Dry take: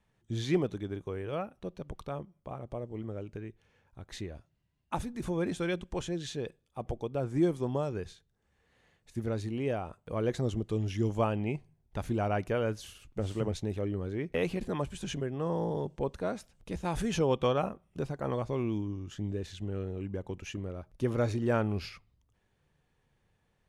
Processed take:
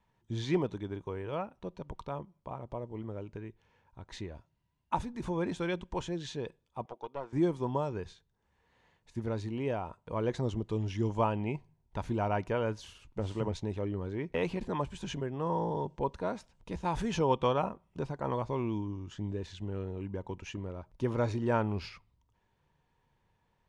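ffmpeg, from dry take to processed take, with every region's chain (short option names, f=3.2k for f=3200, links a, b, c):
-filter_complex "[0:a]asettb=1/sr,asplit=3[a][b][c];[a]atrim=end=6.864[d];[b]atrim=start=6.86:end=7.33,asetpts=PTS-STARTPTS,afade=t=in:d=0.004:c=qsin,afade=t=out:st=0.466:d=0.004:c=qsin,highpass=450,lowpass=5.3k,aeval=exprs='(tanh(25.1*val(0)+0.65)-tanh(0.65))/25.1':c=same[e];[c]atrim=start=7.326[f];[d][e]acrossfade=d=0.004:c1=hsin:c2=qsin[g];[g][f]acrossfade=d=0.004:c1=qsin:c2=hsin,lowpass=6.8k,equalizer=f=950:t=o:w=0.21:g=12.5,volume=-1.5dB"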